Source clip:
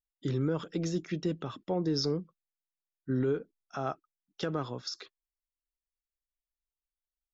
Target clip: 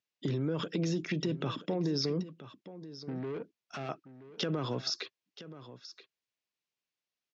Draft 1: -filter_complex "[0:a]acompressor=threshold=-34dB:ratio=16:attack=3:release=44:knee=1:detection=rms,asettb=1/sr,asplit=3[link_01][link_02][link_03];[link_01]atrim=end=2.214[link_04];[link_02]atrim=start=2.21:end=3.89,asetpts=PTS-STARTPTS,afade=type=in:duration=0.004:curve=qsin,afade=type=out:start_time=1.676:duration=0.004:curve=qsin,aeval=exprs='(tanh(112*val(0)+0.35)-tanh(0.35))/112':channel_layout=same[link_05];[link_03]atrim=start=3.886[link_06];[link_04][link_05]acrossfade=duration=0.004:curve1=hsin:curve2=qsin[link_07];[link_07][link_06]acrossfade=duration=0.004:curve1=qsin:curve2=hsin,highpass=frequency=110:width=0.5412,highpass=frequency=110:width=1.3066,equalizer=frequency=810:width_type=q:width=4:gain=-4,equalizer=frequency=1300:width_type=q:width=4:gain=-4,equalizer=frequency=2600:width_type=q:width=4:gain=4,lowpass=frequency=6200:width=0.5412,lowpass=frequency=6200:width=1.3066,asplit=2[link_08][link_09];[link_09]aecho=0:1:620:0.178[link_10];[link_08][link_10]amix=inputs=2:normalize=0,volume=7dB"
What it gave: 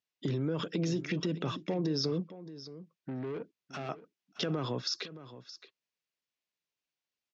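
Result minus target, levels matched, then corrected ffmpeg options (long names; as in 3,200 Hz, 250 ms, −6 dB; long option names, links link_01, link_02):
echo 357 ms early
-filter_complex "[0:a]acompressor=threshold=-34dB:ratio=16:attack=3:release=44:knee=1:detection=rms,asettb=1/sr,asplit=3[link_01][link_02][link_03];[link_01]atrim=end=2.214[link_04];[link_02]atrim=start=2.21:end=3.89,asetpts=PTS-STARTPTS,afade=type=in:duration=0.004:curve=qsin,afade=type=out:start_time=1.676:duration=0.004:curve=qsin,aeval=exprs='(tanh(112*val(0)+0.35)-tanh(0.35))/112':channel_layout=same[link_05];[link_03]atrim=start=3.886[link_06];[link_04][link_05]acrossfade=duration=0.004:curve1=hsin:curve2=qsin[link_07];[link_07][link_06]acrossfade=duration=0.004:curve1=qsin:curve2=hsin,highpass=frequency=110:width=0.5412,highpass=frequency=110:width=1.3066,equalizer=frequency=810:width_type=q:width=4:gain=-4,equalizer=frequency=1300:width_type=q:width=4:gain=-4,equalizer=frequency=2600:width_type=q:width=4:gain=4,lowpass=frequency=6200:width=0.5412,lowpass=frequency=6200:width=1.3066,asplit=2[link_08][link_09];[link_09]aecho=0:1:977:0.178[link_10];[link_08][link_10]amix=inputs=2:normalize=0,volume=7dB"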